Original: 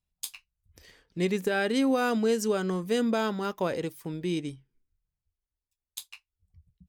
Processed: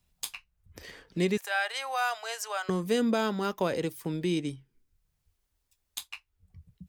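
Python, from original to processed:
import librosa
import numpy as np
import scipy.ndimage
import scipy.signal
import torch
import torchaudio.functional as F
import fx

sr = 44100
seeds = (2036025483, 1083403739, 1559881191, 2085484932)

y = fx.ellip_highpass(x, sr, hz=690.0, order=4, stop_db=80, at=(1.37, 2.69))
y = fx.band_squash(y, sr, depth_pct=40)
y = y * 10.0 ** (1.0 / 20.0)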